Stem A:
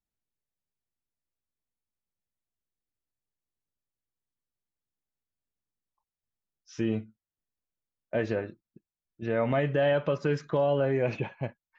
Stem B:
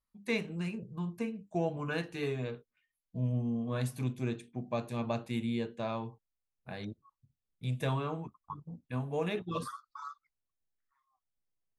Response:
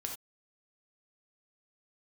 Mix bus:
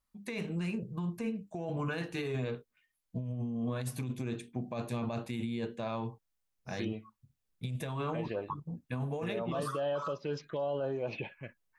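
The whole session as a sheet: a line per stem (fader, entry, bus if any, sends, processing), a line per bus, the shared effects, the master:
+1.0 dB, 0.00 s, no send, low shelf 390 Hz -10.5 dB; tremolo 2.5 Hz, depth 40%; envelope phaser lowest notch 480 Hz, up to 2100 Hz, full sweep at -29.5 dBFS
+2.0 dB, 0.00 s, no send, negative-ratio compressor -36 dBFS, ratio -1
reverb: off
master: limiter -26 dBFS, peak gain reduction 7 dB

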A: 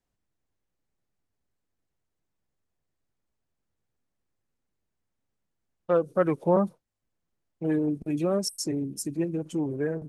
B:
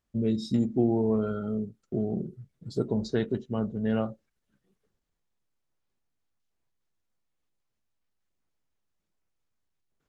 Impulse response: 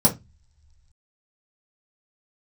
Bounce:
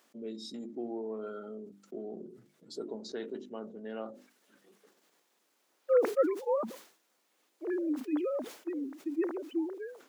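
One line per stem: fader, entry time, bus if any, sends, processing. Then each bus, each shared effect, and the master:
-5.0 dB, 0.00 s, no send, sine-wave speech; auto duck -20 dB, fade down 0.30 s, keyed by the second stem
-11.5 dB, 0.00 s, no send, notches 50/100/150/200/250/300/350 Hz; fast leveller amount 50%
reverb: off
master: HPF 270 Hz 24 dB/oct; sustainer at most 110 dB/s

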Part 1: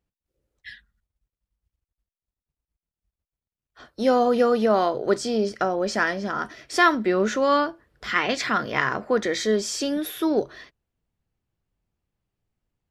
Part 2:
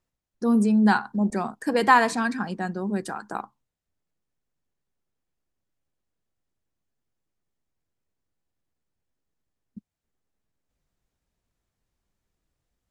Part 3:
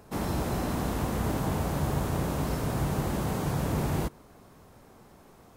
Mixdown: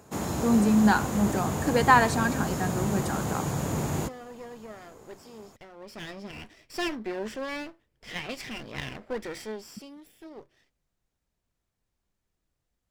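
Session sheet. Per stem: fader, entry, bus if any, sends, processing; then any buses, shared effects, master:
5.68 s -22.5 dB -> 6.19 s -10.5 dB -> 9.32 s -10.5 dB -> 9.95 s -22 dB, 0.00 s, no send, minimum comb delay 0.39 ms
-1.5 dB, 0.00 s, no send, dry
0.0 dB, 0.00 s, no send, HPF 80 Hz; bell 6900 Hz +13 dB 0.21 oct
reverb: off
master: dry

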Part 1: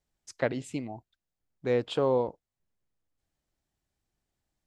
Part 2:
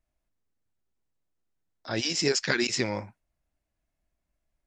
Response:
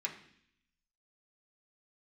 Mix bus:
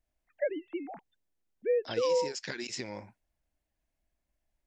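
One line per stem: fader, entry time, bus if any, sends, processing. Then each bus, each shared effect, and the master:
+0.5 dB, 0.00 s, no send, sine-wave speech
-1.5 dB, 0.00 s, no send, compressor 12:1, threshold -32 dBFS, peak gain reduction 12.5 dB; thirty-one-band EQ 100 Hz -4 dB, 160 Hz -4 dB, 1250 Hz -6 dB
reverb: off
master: compressor 3:1, threshold -25 dBFS, peak gain reduction 4.5 dB

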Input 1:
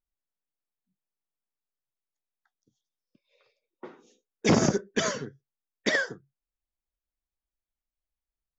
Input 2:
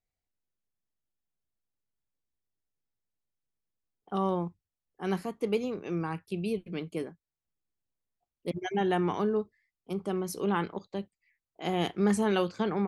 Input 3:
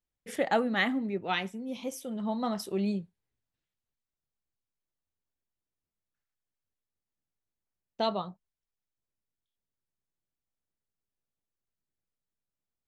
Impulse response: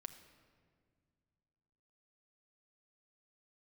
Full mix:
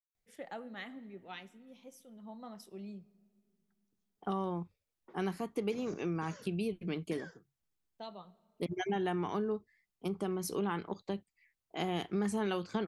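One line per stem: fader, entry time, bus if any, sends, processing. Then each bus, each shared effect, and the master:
-16.0 dB, 1.25 s, bus A, no send, dry
+2.0 dB, 0.15 s, no bus, no send, bell 540 Hz -3.5 dB 0.34 oct
-18.0 dB, 0.00 s, bus A, send -4 dB, three-band expander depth 40%
bus A: 0.0 dB, compressor, threshold -44 dBFS, peak gain reduction 11.5 dB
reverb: on, RT60 2.1 s, pre-delay 6 ms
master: compressor 3:1, threshold -33 dBFS, peak gain reduction 10 dB

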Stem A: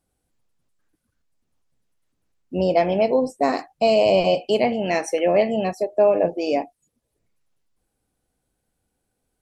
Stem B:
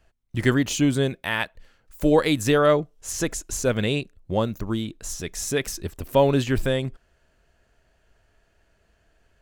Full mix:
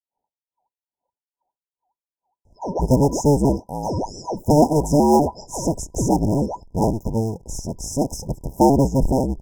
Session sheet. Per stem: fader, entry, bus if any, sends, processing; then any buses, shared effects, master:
-1.0 dB, 0.00 s, no send, low-pass opened by the level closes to 1000 Hz, open at -14.5 dBFS; ring modulator with a swept carrier 1800 Hz, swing 60%, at 2.4 Hz
+2.5 dB, 2.45 s, no send, cycle switcher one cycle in 2, inverted; low shelf 320 Hz +4 dB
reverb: off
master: FFT band-reject 1000–5000 Hz; high shelf 8300 Hz -8.5 dB

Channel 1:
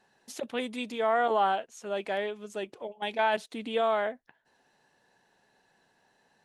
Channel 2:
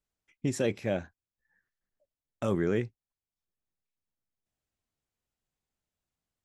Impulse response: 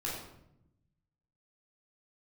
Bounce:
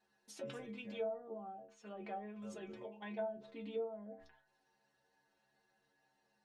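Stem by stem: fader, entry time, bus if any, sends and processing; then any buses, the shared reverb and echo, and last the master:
-1.0 dB, 0.00 s, no send, treble ducked by the level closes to 310 Hz, closed at -24.5 dBFS; sustainer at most 100 dB/s
-17.5 dB, 0.00 s, no send, dry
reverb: off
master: metallic resonator 67 Hz, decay 0.45 s, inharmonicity 0.008

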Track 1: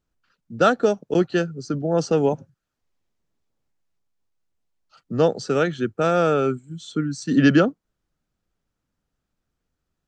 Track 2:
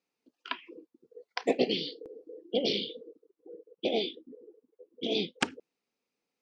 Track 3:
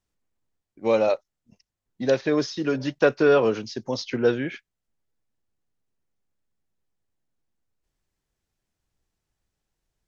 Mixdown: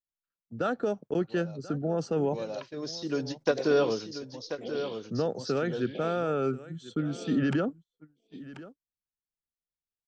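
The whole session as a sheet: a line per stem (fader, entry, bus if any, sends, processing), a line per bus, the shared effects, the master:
-5.5 dB, 0.00 s, no send, echo send -17.5 dB, limiter -13.5 dBFS, peak gain reduction 8.5 dB
-11.5 dB, 2.10 s, no send, echo send -8.5 dB, dry
-5.5 dB, 0.45 s, no send, echo send -10 dB, resonant high shelf 3300 Hz +11 dB, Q 1.5; ending taper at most 470 dB/s; auto duck -21 dB, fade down 1.15 s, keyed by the first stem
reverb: off
echo: echo 1.035 s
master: gate -44 dBFS, range -24 dB; high shelf 3800 Hz -9 dB

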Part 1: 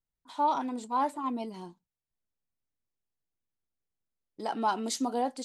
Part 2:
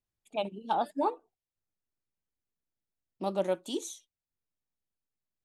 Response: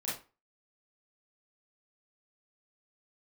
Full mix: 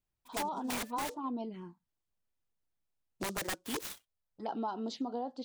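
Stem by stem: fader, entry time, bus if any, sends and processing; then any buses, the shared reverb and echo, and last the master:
0.0 dB, 0.00 s, no send, LPF 3400 Hz 12 dB/oct; envelope phaser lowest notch 310 Hz, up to 2200 Hz, full sweep at -29.5 dBFS
+1.0 dB, 0.00 s, no send, reverb removal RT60 0.52 s; wrapped overs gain 27.5 dB; noise-modulated delay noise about 5600 Hz, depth 0.051 ms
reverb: off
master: compressor, threshold -33 dBFS, peak gain reduction 9.5 dB

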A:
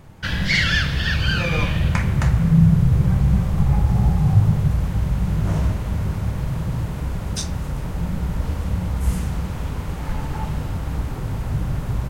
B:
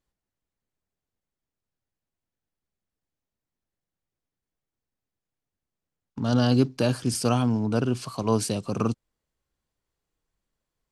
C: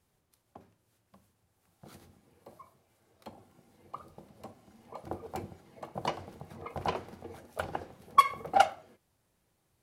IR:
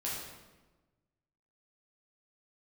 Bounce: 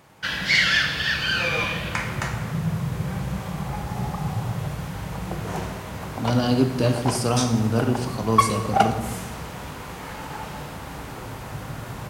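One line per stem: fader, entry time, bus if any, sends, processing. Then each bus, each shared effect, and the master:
-2.5 dB, 0.00 s, send -4 dB, HPF 570 Hz 6 dB/oct
-2.5 dB, 0.00 s, send -5 dB, dry
+2.5 dB, 0.20 s, send -10 dB, elliptic high-pass 330 Hz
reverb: on, RT60 1.2 s, pre-delay 8 ms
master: dry

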